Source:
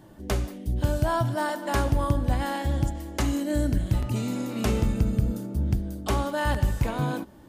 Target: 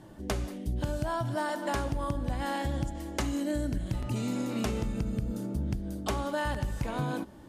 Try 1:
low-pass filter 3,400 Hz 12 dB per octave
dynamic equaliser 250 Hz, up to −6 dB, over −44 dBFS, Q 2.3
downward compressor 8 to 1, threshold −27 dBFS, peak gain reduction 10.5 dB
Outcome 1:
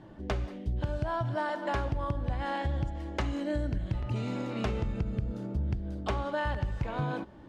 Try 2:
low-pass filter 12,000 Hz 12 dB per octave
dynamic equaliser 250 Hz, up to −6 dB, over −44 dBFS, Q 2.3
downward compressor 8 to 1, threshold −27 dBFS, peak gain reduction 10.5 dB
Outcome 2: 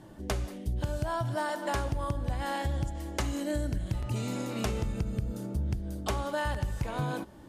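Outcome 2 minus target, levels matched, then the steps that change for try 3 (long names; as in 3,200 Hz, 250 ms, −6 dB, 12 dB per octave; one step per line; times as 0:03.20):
250 Hz band −3.0 dB
change: dynamic equaliser 84 Hz, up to −6 dB, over −44 dBFS, Q 2.3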